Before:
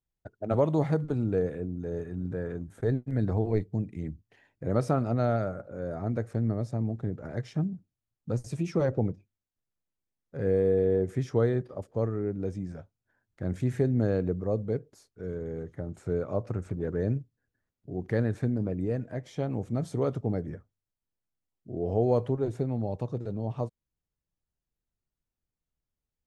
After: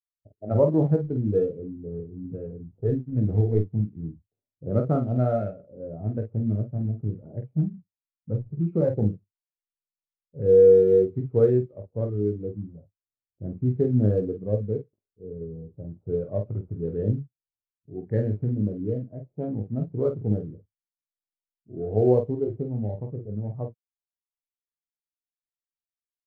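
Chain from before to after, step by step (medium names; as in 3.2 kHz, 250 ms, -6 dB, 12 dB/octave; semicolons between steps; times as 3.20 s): local Wiener filter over 25 samples; early reflections 19 ms -8.5 dB, 48 ms -5 dB; in parallel at -10 dB: companded quantiser 4-bit; on the sum: level-controlled noise filter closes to 580 Hz, open at -18.5 dBFS; spectral contrast expander 1.5:1; trim +1.5 dB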